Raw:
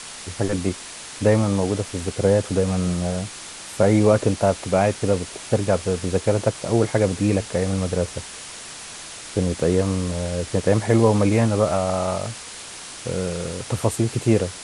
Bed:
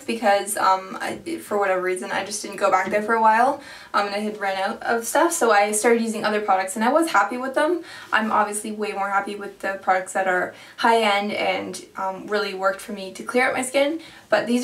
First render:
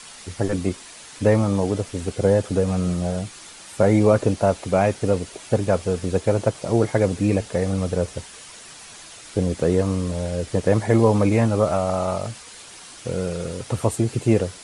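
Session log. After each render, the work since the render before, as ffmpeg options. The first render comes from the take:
-af "afftdn=nr=7:nf=-37"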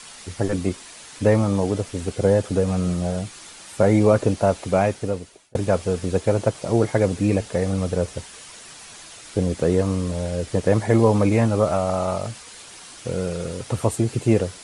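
-filter_complex "[0:a]asplit=2[a][b];[a]atrim=end=5.55,asetpts=PTS-STARTPTS,afade=t=out:st=4.77:d=0.78[c];[b]atrim=start=5.55,asetpts=PTS-STARTPTS,afade=t=in:d=0.004:c=hsin[d];[c][d]concat=n=2:v=0:a=1"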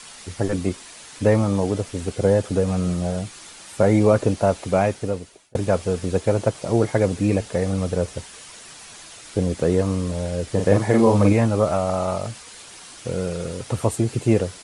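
-filter_complex "[0:a]asplit=3[a][b][c];[a]afade=t=out:st=10.58:d=0.02[d];[b]asplit=2[e][f];[f]adelay=40,volume=-4dB[g];[e][g]amix=inputs=2:normalize=0,afade=t=in:st=10.58:d=0.02,afade=t=out:st=11.32:d=0.02[h];[c]afade=t=in:st=11.32:d=0.02[i];[d][h][i]amix=inputs=3:normalize=0"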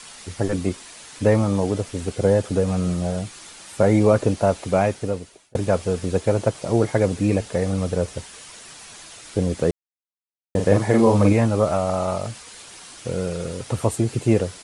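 -filter_complex "[0:a]asplit=3[a][b][c];[a]atrim=end=9.71,asetpts=PTS-STARTPTS,afade=t=out:st=9.706:d=0.004:c=hsin[d];[b]atrim=start=9.71:end=10.55,asetpts=PTS-STARTPTS,volume=0[e];[c]atrim=start=10.55,asetpts=PTS-STARTPTS,afade=t=in:d=0.004:c=hsin[f];[d][e][f]concat=n=3:v=0:a=1"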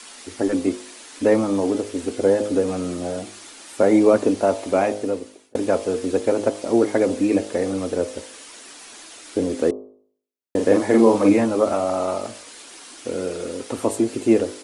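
-af "lowshelf=f=200:t=q:w=3:g=-10,bandreject=f=51.8:t=h:w=4,bandreject=f=103.6:t=h:w=4,bandreject=f=155.4:t=h:w=4,bandreject=f=207.2:t=h:w=4,bandreject=f=259:t=h:w=4,bandreject=f=310.8:t=h:w=4,bandreject=f=362.6:t=h:w=4,bandreject=f=414.4:t=h:w=4,bandreject=f=466.2:t=h:w=4,bandreject=f=518:t=h:w=4,bandreject=f=569.8:t=h:w=4,bandreject=f=621.6:t=h:w=4,bandreject=f=673.4:t=h:w=4,bandreject=f=725.2:t=h:w=4,bandreject=f=777:t=h:w=4,bandreject=f=828.8:t=h:w=4,bandreject=f=880.6:t=h:w=4,bandreject=f=932.4:t=h:w=4,bandreject=f=984.2:t=h:w=4,bandreject=f=1.036k:t=h:w=4,bandreject=f=1.0878k:t=h:w=4,bandreject=f=1.1396k:t=h:w=4,bandreject=f=1.1914k:t=h:w=4,bandreject=f=1.2432k:t=h:w=4"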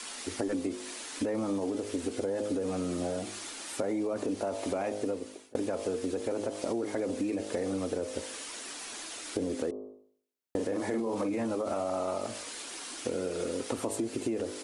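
-af "alimiter=limit=-14.5dB:level=0:latency=1:release=41,acompressor=threshold=-29dB:ratio=6"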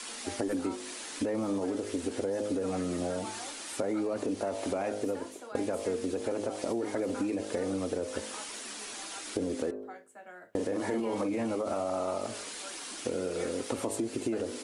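-filter_complex "[1:a]volume=-28dB[a];[0:a][a]amix=inputs=2:normalize=0"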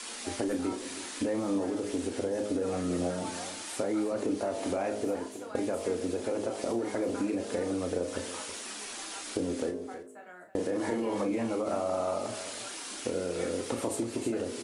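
-filter_complex "[0:a]asplit=2[a][b];[b]adelay=34,volume=-8dB[c];[a][c]amix=inputs=2:normalize=0,aecho=1:1:320:0.237"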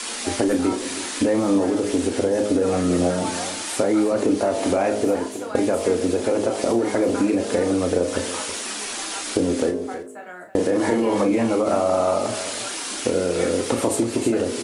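-af "volume=11dB"

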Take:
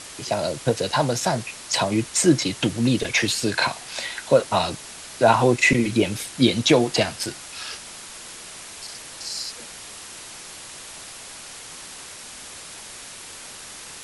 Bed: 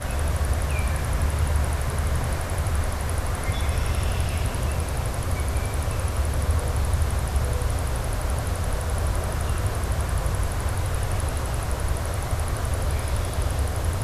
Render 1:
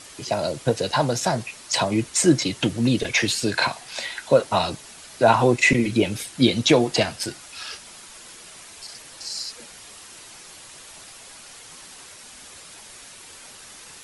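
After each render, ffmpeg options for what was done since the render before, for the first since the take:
-af "afftdn=nr=6:nf=-40"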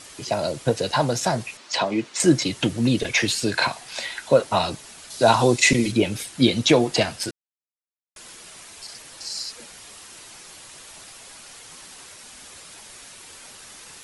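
-filter_complex "[0:a]asettb=1/sr,asplit=3[a][b][c];[a]atrim=end=1.574[d];[b]atrim=start=1.57:end=2.2,asetpts=PTS-STARTPTS,afade=t=in:d=0.004:c=qsin,afade=t=out:st=0.626:d=0.004:c=qsin,highpass=220,lowpass=4.9k[e];[c]atrim=start=2.196[f];[d][e]acrossfade=d=0.004:c1=hsin:c2=qsin[g];[g][f]acrossfade=d=0.004:c1=qsin:c2=hsin,asettb=1/sr,asplit=3[h][i][j];[h]atrim=end=5.104[k];[i]atrim=start=5.1:end=5.92,asetpts=PTS-STARTPTS,afade=t=in:d=0.004:c=qsin,afade=t=out:st=0.816:d=0.004:c=qsin,highshelf=f=3.1k:t=q:w=1.5:g=6.5[l];[j]atrim=start=5.916[m];[k][l]acrossfade=d=0.004:c1=hsin:c2=qsin[n];[n][m]acrossfade=d=0.004:c1=qsin:c2=hsin,asplit=3[o][p][q];[o]atrim=end=7.31,asetpts=PTS-STARTPTS,afade=t=out:st=7.306:d=0.004:c=hsin[r];[p]atrim=start=7.31:end=8.16,asetpts=PTS-STARTPTS,volume=0[s];[q]atrim=start=8.16,asetpts=PTS-STARTPTS,afade=t=in:d=0.004:c=hsin[t];[r][s][t]concat=n=3:v=0:a=1"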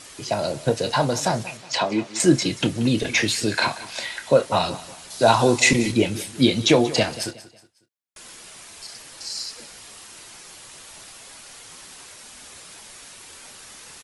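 -filter_complex "[0:a]asplit=2[a][b];[b]adelay=28,volume=-12.5dB[c];[a][c]amix=inputs=2:normalize=0,aecho=1:1:183|366|549:0.141|0.0523|0.0193"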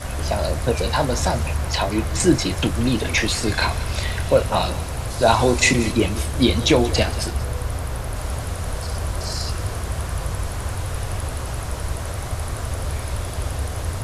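-filter_complex "[1:a]volume=-1dB[a];[0:a][a]amix=inputs=2:normalize=0"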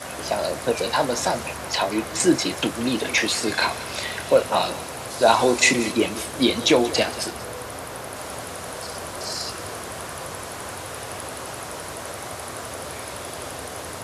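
-af "highpass=250"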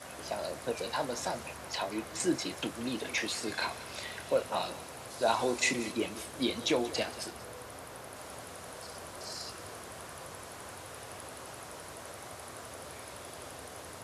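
-af "volume=-12dB"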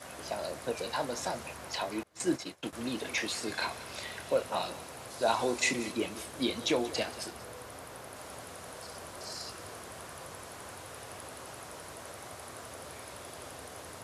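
-filter_complex "[0:a]asettb=1/sr,asplit=3[a][b][c];[a]atrim=end=2.034[d];[b]atrim=start=2.03:end=2.73,asetpts=PTS-STARTPTS,afade=t=in:d=0.004:c=qsin,afade=t=out:st=0.696:d=0.004:c=qsin,agate=range=-33dB:threshold=-32dB:ratio=3:release=100:detection=peak[e];[c]atrim=start=2.726[f];[d][e]acrossfade=d=0.004:c1=hsin:c2=qsin[g];[g][f]acrossfade=d=0.004:c1=qsin:c2=hsin"

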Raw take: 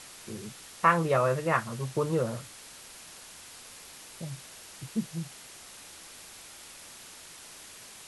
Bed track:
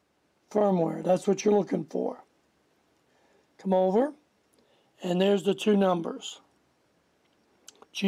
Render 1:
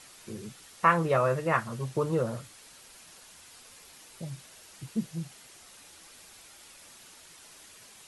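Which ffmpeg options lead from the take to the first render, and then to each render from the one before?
-af "afftdn=nr=6:nf=-49"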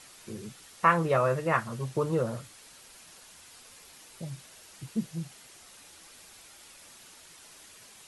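-af anull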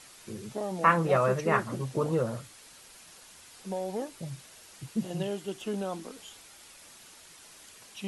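-filter_complex "[1:a]volume=-10.5dB[a];[0:a][a]amix=inputs=2:normalize=0"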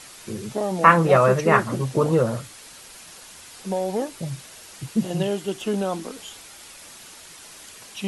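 -af "volume=8.5dB"

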